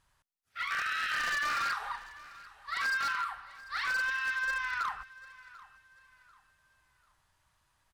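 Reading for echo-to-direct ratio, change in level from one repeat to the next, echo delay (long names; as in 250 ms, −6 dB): −19.0 dB, −9.5 dB, 742 ms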